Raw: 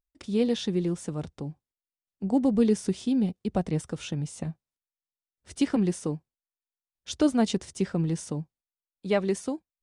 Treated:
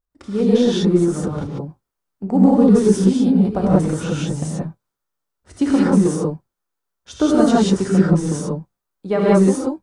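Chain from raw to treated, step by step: resonant high shelf 1.8 kHz -7 dB, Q 1.5; transient shaper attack +3 dB, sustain +7 dB; gated-style reverb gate 210 ms rising, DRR -6.5 dB; trim +2 dB

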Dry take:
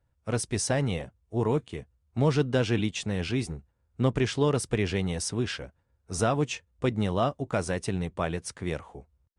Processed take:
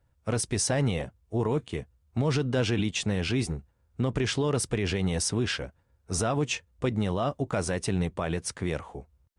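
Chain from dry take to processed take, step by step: peak limiter -21.5 dBFS, peak gain reduction 9.5 dB; trim +4 dB

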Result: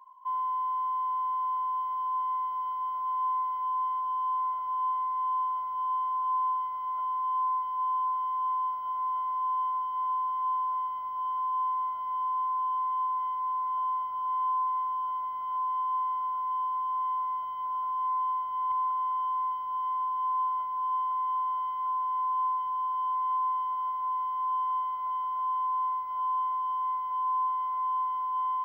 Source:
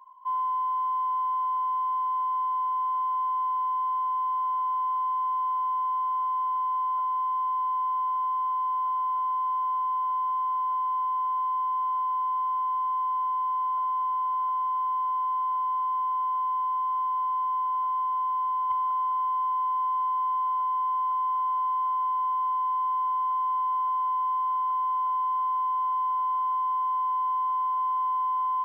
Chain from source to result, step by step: echo that smears into a reverb 1515 ms, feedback 66%, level -9 dB; in parallel at -3 dB: peak limiter -26.5 dBFS, peak gain reduction 7 dB; on the sum: trim -6.5 dB

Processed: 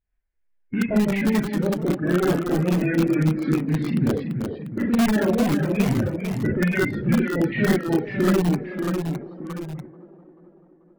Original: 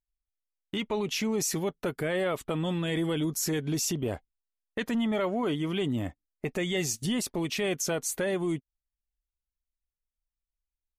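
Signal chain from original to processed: coarse spectral quantiser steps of 30 dB; low-pass 2.7 kHz 24 dB/octave; peaking EQ 1.3 kHz -13.5 dB 0.64 oct; Schroeder reverb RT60 0.36 s, combs from 30 ms, DRR -2.5 dB; in parallel at -7 dB: integer overflow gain 19 dB; on the sum: formant shift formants -5 st; reverb removal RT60 1.3 s; ever faster or slower copies 103 ms, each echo -1 st, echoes 2, each echo -6 dB; on a send: feedback echo behind a band-pass 437 ms, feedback 56%, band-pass 460 Hz, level -14.5 dB; on the sum: trim +5 dB

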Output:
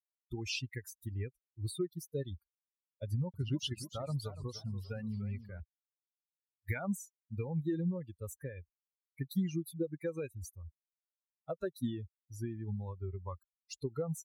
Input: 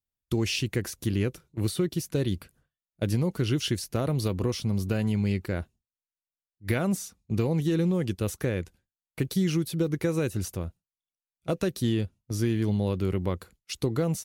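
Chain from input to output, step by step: expander on every frequency bin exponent 3; 3.05–5.60 s: modulated delay 293 ms, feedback 36%, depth 168 cents, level -13.5 dB; trim -3 dB

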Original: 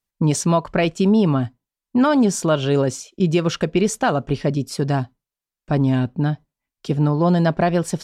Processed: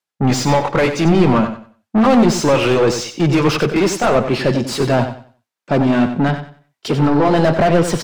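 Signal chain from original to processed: pitch bend over the whole clip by -3 st ending unshifted; high-pass 92 Hz 12 dB/octave; treble shelf 3 kHz +10 dB; overdrive pedal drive 29 dB, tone 1.1 kHz, clips at -5 dBFS; on a send: feedback delay 93 ms, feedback 31%, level -9 dB; on the sum: three bands expanded up and down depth 40%

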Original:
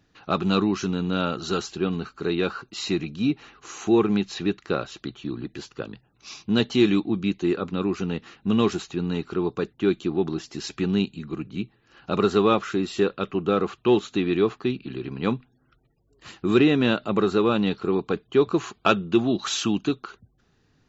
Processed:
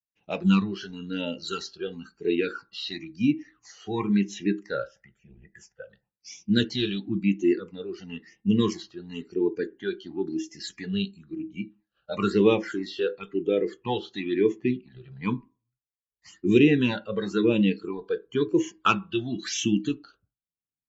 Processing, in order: expander -47 dBFS; 4.87–5.90 s: static phaser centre 1.1 kHz, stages 6; spectral noise reduction 16 dB; phase shifter stages 8, 0.98 Hz, lowest notch 270–1400 Hz; on a send: reverberation RT60 0.30 s, pre-delay 3 ms, DRR 10.5 dB; on the sum: trim +1 dB

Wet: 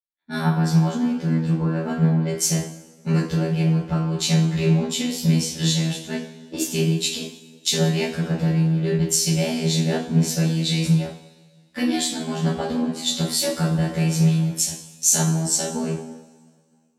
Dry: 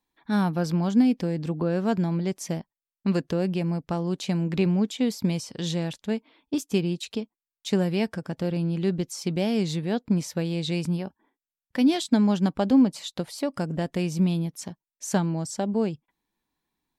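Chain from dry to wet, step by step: treble shelf 4 kHz +7 dB; de-hum 65.9 Hz, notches 36; robot voice 80.6 Hz; compression 6:1, threshold -29 dBFS, peak gain reduction 12.5 dB; two-slope reverb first 0.44 s, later 4.1 s, from -17 dB, DRR -9 dB; three bands expanded up and down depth 100%; trim +3 dB

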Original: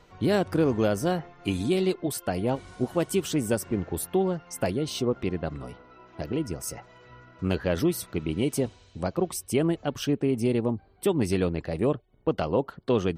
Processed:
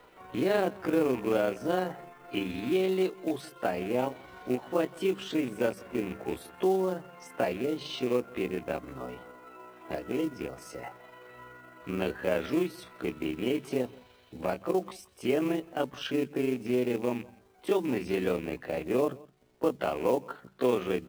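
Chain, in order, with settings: rattle on loud lows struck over -28 dBFS, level -31 dBFS; hum notches 50/100/150/200 Hz; in parallel at +1 dB: compression 6:1, threshold -32 dBFS, peak gain reduction 13 dB; on the sum: three-band isolator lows -13 dB, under 240 Hz, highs -21 dB, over 3.7 kHz; companded quantiser 6-bit; on a send: delay 108 ms -23 dB; on the sum: granular stretch 1.6×, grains 85 ms; trim -3 dB

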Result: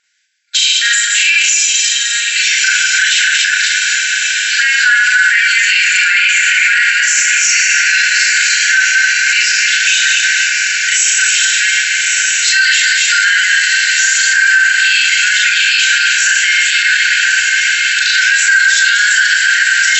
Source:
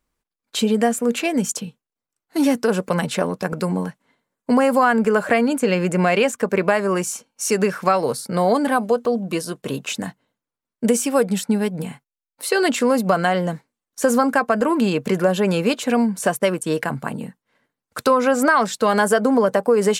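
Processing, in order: backward echo that repeats 130 ms, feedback 59%, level -4.5 dB; FFT band-pass 1.4–7.8 kHz; on a send: echo that smears into a reverb 1249 ms, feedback 69%, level -8 dB; on the sum: Schroeder reverb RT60 0.37 s, combs from 29 ms, DRR -3.5 dB; loudness maximiser +19 dB; trim -1 dB

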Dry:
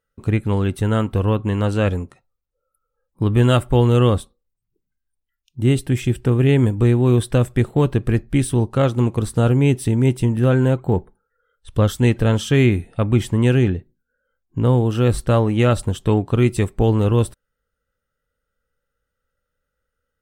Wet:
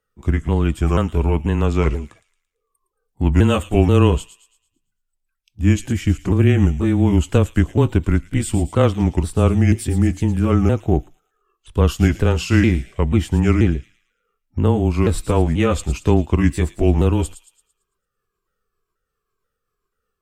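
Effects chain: sawtooth pitch modulation -4 st, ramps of 486 ms; frequency shift -17 Hz; feedback echo behind a high-pass 112 ms, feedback 41%, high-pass 3.5 kHz, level -9 dB; trim +2 dB

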